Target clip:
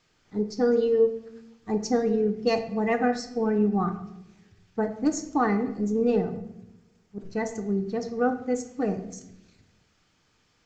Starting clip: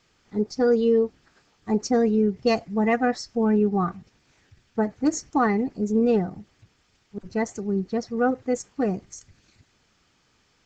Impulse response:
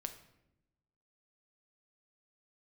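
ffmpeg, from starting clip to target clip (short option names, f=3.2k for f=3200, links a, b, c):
-filter_complex "[0:a]asettb=1/sr,asplit=3[a][b][c];[a]atrim=end=6.374[d];[b]atrim=start=6.37:end=7.19,asetpts=PTS-STARTPTS,afade=t=in:d=0.004:c=qsin,afade=t=out:st=0.816:d=0.004:c=qsin,equalizer=f=3.3k:t=o:w=1.7:g=-7[e];[c]atrim=start=7.186[f];[d][e]acrossfade=d=0.004:c1=hsin:c2=qsin[g];[g][f]acrossfade=d=0.004:c1=qsin:c2=hsin[h];[1:a]atrim=start_sample=2205[i];[h][i]afir=irnorm=-1:irlink=0"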